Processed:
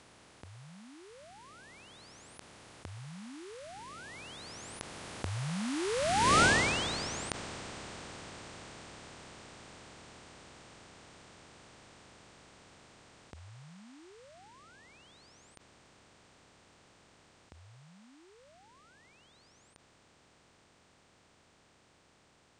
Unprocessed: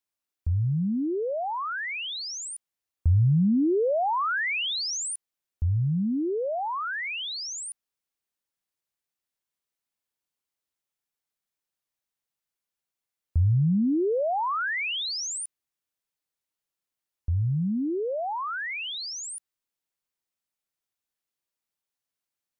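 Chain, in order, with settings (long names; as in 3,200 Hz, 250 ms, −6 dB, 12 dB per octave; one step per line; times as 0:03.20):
compressor on every frequency bin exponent 0.2
source passing by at 0:06.41, 23 m/s, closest 3.2 metres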